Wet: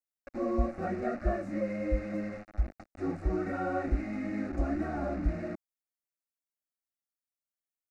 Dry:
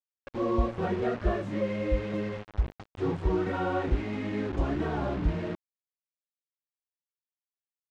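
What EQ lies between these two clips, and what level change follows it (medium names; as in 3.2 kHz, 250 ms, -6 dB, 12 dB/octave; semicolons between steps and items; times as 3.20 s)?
peaking EQ 1.6 kHz -4.5 dB 0.33 oct; static phaser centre 650 Hz, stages 8; 0.0 dB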